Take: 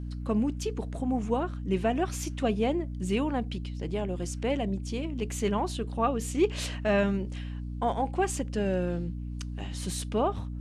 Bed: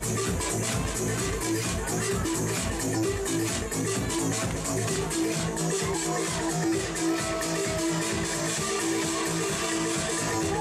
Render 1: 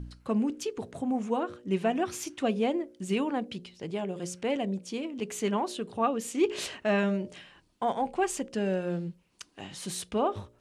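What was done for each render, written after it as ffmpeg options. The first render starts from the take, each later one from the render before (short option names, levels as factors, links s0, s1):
-af "bandreject=f=60:t=h:w=4,bandreject=f=120:t=h:w=4,bandreject=f=180:t=h:w=4,bandreject=f=240:t=h:w=4,bandreject=f=300:t=h:w=4,bandreject=f=360:t=h:w=4,bandreject=f=420:t=h:w=4,bandreject=f=480:t=h:w=4,bandreject=f=540:t=h:w=4,bandreject=f=600:t=h:w=4"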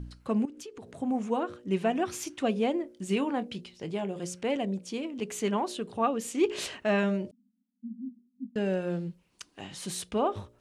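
-filter_complex "[0:a]asettb=1/sr,asplit=3[s0][s1][s2];[s0]atrim=end=0.454[s3];[s1]atrim=start=0.45:end=1.02,asetpts=PTS-STARTPTS,afade=t=in:d=0.004:c=qsin,afade=t=out:st=0.566:d=0.004:c=qsin,acompressor=threshold=0.00794:ratio=4:attack=3.2:release=140:knee=1:detection=peak[s4];[s2]atrim=start=1.016[s5];[s3][s4]acrossfade=d=0.004:c1=hsin:c2=qsin[s6];[s6][s5]acrossfade=d=0.004:c1=qsin:c2=hsin,asettb=1/sr,asplit=3[s7][s8][s9];[s7]atrim=end=2.824[s10];[s8]atrim=start=2.82:end=4.19,asetpts=PTS-STARTPTS,afade=t=in:d=0.004:c=qsin,afade=t=out:st=1.366:d=0.004:c=qsin,asplit=2[s11][s12];[s12]adelay=25,volume=0.237[s13];[s11][s13]amix=inputs=2:normalize=0,atrim=end_sample=60417[s14];[s9]atrim=start=4.186[s15];[s10][s14]acrossfade=d=0.004:c1=hsin:c2=qsin[s16];[s16][s15]acrossfade=d=0.004:c1=qsin:c2=hsin,asettb=1/sr,asplit=3[s17][s18][s19];[s17]atrim=end=7.314[s20];[s18]atrim=start=7.31:end=8.56,asetpts=PTS-STARTPTS,afade=t=in:d=0.004:c=qsin,afade=t=out:st=1.246:d=0.004:c=qsin,asuperpass=centerf=230:order=12:qfactor=3.2[s21];[s19]atrim=start=8.556[s22];[s20][s21]acrossfade=d=0.004:c1=hsin:c2=qsin[s23];[s23][s22]acrossfade=d=0.004:c1=qsin:c2=hsin"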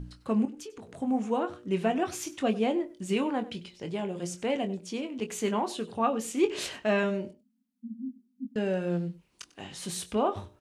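-filter_complex "[0:a]asplit=2[s0][s1];[s1]adelay=23,volume=0.355[s2];[s0][s2]amix=inputs=2:normalize=0,aecho=1:1:97:0.112"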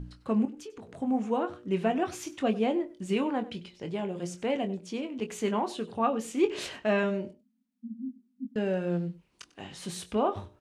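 -af "highshelf=f=5200:g=-7"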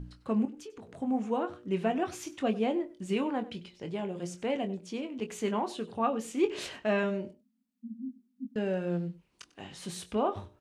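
-af "volume=0.794"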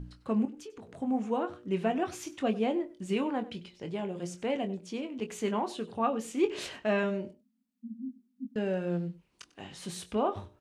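-af anull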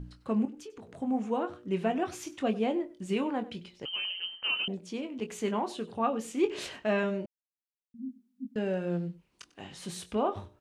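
-filter_complex "[0:a]asettb=1/sr,asplit=3[s0][s1][s2];[s0]atrim=end=3.854[s3];[s1]atrim=start=3.85:end=4.68,asetpts=PTS-STARTPTS,afade=t=in:d=0.004:c=qsin,afade=t=out:st=0.826:d=0.004:c=qsin,lowpass=f=2800:t=q:w=0.5098,lowpass=f=2800:t=q:w=0.6013,lowpass=f=2800:t=q:w=0.9,lowpass=f=2800:t=q:w=2.563,afreqshift=-3300[s4];[s2]atrim=start=4.676[s5];[s3][s4]acrossfade=d=0.004:c1=hsin:c2=qsin[s6];[s6][s5]acrossfade=d=0.004:c1=qsin:c2=hsin,asplit=3[s7][s8][s9];[s7]atrim=end=7.26,asetpts=PTS-STARTPTS,afade=t=out:st=7.256:d=0.004:c=hsin[s10];[s8]atrim=start=7.26:end=7.94,asetpts=PTS-STARTPTS,volume=0[s11];[s9]atrim=start=7.94,asetpts=PTS-STARTPTS,afade=t=in:d=0.004:c=hsin[s12];[s10][s11][s12]concat=n=3:v=0:a=1"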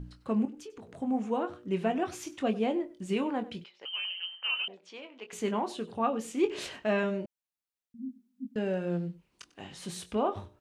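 -filter_complex "[0:a]asettb=1/sr,asplit=3[s0][s1][s2];[s0]atrim=end=3.644[s3];[s1]atrim=start=3.64:end=5.33,asetpts=PTS-STARTPTS,afade=t=in:d=0.004:c=qsin,afade=t=out:st=1.686:d=0.004:c=qsin,highpass=700,lowpass=4100[s4];[s2]atrim=start=5.326[s5];[s3][s4]acrossfade=d=0.004:c1=hsin:c2=qsin[s6];[s6][s5]acrossfade=d=0.004:c1=qsin:c2=hsin"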